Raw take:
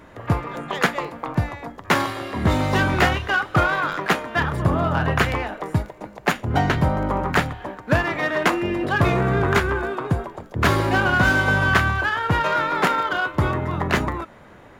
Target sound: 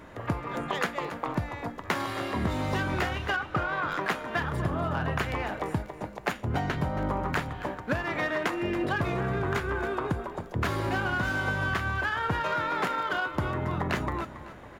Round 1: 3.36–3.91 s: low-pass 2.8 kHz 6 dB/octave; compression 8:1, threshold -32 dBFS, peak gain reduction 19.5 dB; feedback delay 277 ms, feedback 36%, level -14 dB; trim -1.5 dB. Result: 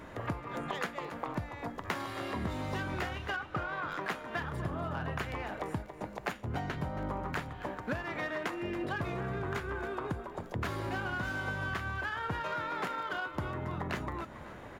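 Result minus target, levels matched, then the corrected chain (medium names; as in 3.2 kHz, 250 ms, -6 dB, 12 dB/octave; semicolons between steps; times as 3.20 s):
compression: peak gain reduction +7 dB
3.36–3.91 s: low-pass 2.8 kHz 6 dB/octave; compression 8:1, threshold -24 dBFS, peak gain reduction 12.5 dB; feedback delay 277 ms, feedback 36%, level -14 dB; trim -1.5 dB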